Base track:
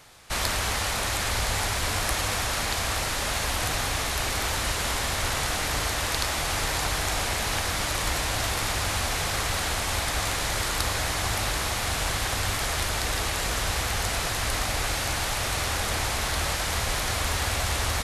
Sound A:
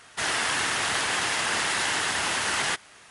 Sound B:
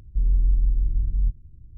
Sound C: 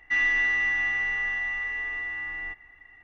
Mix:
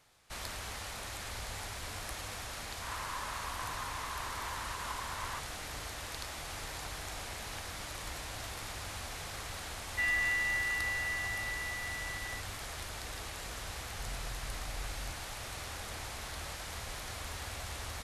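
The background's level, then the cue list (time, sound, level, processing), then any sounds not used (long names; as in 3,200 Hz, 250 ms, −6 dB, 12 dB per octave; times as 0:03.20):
base track −15 dB
0:02.64: mix in A −6.5 dB + four-pole ladder band-pass 1,100 Hz, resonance 75%
0:09.87: mix in C −7 dB + mu-law and A-law mismatch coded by A
0:13.82: mix in B −17 dB + soft clipping −23 dBFS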